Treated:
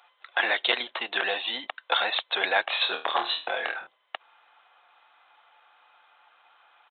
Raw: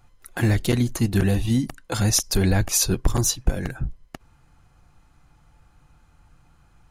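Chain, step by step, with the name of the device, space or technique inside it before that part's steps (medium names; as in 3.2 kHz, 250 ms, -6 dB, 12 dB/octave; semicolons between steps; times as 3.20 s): musical greeting card (resampled via 8 kHz; high-pass 640 Hz 24 dB/octave; peaking EQ 3.7 kHz +7 dB 0.56 oct); 2.64–3.87 s: flutter echo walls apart 4.4 m, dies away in 0.29 s; trim +6.5 dB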